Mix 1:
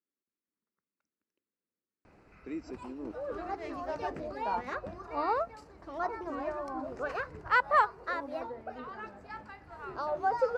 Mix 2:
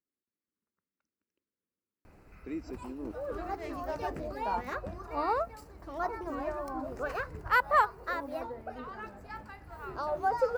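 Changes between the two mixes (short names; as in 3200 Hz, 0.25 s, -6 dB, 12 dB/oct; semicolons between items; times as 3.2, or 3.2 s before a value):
background: remove LPF 6200 Hz 12 dB/oct; master: add low shelf 85 Hz +11.5 dB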